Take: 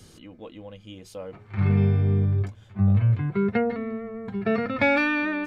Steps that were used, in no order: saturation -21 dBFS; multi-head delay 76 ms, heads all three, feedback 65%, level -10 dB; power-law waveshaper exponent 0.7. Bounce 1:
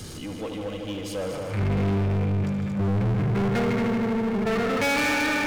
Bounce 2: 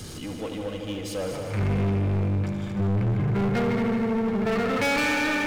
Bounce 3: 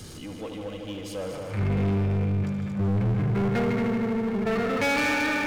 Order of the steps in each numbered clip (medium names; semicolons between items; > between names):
multi-head delay > power-law waveshaper > saturation; power-law waveshaper > multi-head delay > saturation; multi-head delay > saturation > power-law waveshaper